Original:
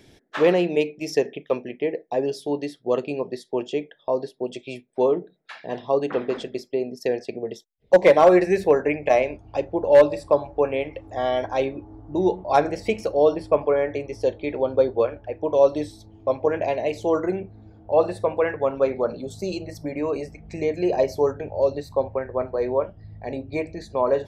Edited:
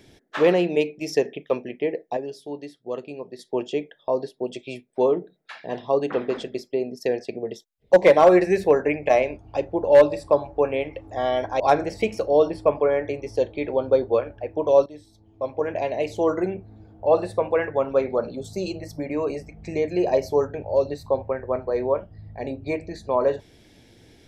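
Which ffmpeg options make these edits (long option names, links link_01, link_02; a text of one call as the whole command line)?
ffmpeg -i in.wav -filter_complex "[0:a]asplit=5[link_01][link_02][link_03][link_04][link_05];[link_01]atrim=end=2.172[link_06];[link_02]atrim=start=2.168:end=3.392,asetpts=PTS-STARTPTS,volume=-8dB[link_07];[link_03]atrim=start=3.388:end=11.602[link_08];[link_04]atrim=start=12.458:end=15.72,asetpts=PTS-STARTPTS,afade=type=out:start_time=3.258:duration=0.004:curve=hsin:silence=0.125893[link_09];[link_05]atrim=start=15.72,asetpts=PTS-STARTPTS,afade=type=in:duration=1.24:silence=0.125893[link_10];[link_06][link_07]acrossfade=duration=0.004:curve1=hsin:curve2=hsin[link_11];[link_11][link_08]acrossfade=duration=0.004:curve1=hsin:curve2=hsin[link_12];[link_09][link_10]concat=n=2:v=0:a=1[link_13];[link_12][link_13]acrossfade=duration=0.004:curve1=hsin:curve2=hsin" out.wav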